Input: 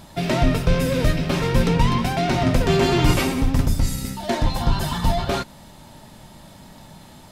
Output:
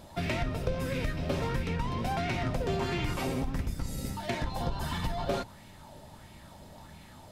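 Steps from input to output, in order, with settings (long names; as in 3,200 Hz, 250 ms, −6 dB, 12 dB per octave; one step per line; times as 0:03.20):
sub-octave generator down 1 octave, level −1 dB
downward compressor, threshold −20 dBFS, peak gain reduction 10.5 dB
auto-filter bell 1.5 Hz 510–2,400 Hz +9 dB
level −8.5 dB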